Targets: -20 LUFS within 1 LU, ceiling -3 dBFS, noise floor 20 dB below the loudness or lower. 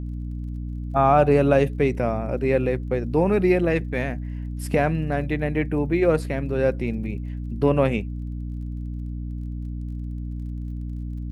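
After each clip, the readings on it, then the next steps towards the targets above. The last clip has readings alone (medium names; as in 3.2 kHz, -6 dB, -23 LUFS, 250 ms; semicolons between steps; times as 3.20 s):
tick rate 30 per s; hum 60 Hz; highest harmonic 300 Hz; hum level -28 dBFS; loudness -24.0 LUFS; peak level -5.5 dBFS; loudness target -20.0 LUFS
-> de-click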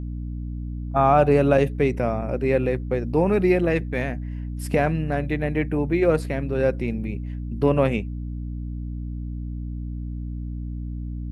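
tick rate 0.088 per s; hum 60 Hz; highest harmonic 300 Hz; hum level -28 dBFS
-> de-hum 60 Hz, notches 5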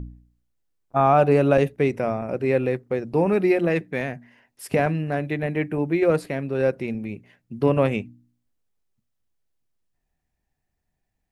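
hum not found; loudness -22.5 LUFS; peak level -6.5 dBFS; loudness target -20.0 LUFS
-> trim +2.5 dB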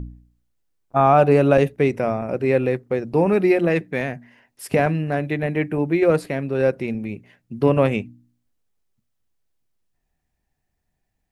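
loudness -20.0 LUFS; peak level -4.0 dBFS; noise floor -75 dBFS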